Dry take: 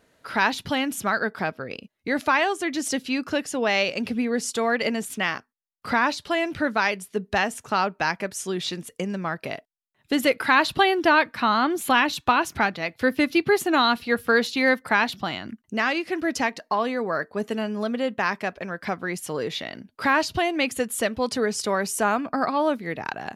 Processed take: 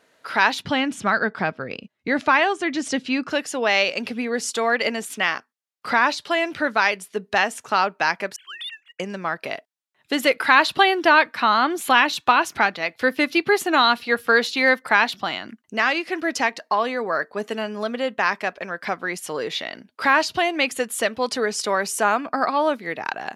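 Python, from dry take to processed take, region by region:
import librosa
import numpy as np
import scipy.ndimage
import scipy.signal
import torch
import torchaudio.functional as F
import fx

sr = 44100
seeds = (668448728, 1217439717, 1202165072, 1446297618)

y = fx.chain(x, sr, fx.lowpass(hz=9300.0, slope=24),
    fx.bass_treble(bass_db=11, treble_db=-5), at=(0.62, 3.3))
y = fx.chain(y, sr, fx.sine_speech(),
    fx.highpass(hz=1400.0, slope=24),
    fx.leveller(passes=1), at=(8.36, 9.0))
y = fx.highpass(y, sr, hz=510.0, slope=6)
y = fx.high_shelf(y, sr, hz=10000.0, db=-7.5)
y = F.gain(torch.from_numpy(y), 4.5).numpy()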